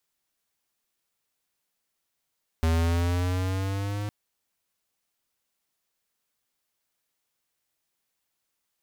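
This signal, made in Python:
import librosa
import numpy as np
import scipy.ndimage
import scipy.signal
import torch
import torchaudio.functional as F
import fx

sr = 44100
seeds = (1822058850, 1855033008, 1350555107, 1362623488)

y = fx.riser_tone(sr, length_s=1.46, level_db=-22.0, wave='square', hz=80.5, rise_st=4.5, swell_db=-9)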